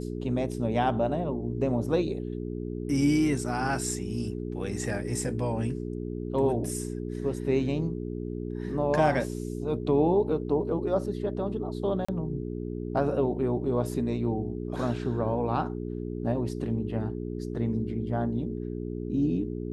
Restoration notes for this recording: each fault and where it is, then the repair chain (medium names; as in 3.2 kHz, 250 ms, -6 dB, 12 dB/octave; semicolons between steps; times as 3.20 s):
hum 60 Hz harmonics 7 -34 dBFS
12.05–12.09 s: dropout 35 ms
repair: de-hum 60 Hz, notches 7; interpolate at 12.05 s, 35 ms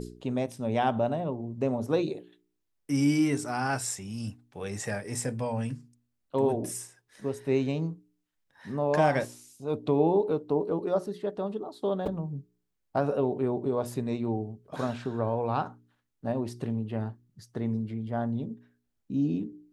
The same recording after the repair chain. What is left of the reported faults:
nothing left